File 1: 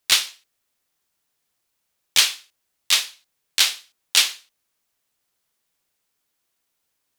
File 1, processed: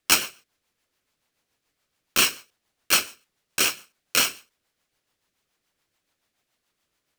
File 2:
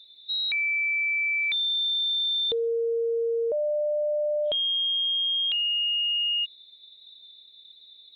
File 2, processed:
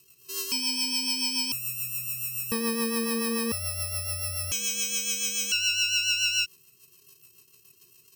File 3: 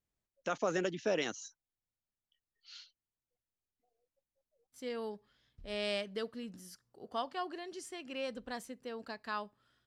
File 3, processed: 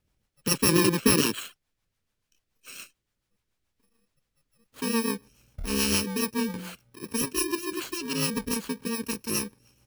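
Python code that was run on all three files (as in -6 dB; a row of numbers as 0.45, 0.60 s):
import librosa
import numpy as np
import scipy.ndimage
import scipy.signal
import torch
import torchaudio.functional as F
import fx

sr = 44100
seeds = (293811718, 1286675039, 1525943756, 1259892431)

y = fx.bit_reversed(x, sr, seeds[0], block=64)
y = fx.rotary(y, sr, hz=7.0)
y = fx.high_shelf(y, sr, hz=6100.0, db=-10.5)
y = y * 10.0 ** (-30 / 20.0) / np.sqrt(np.mean(np.square(y)))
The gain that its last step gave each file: +7.0, +6.5, +19.5 dB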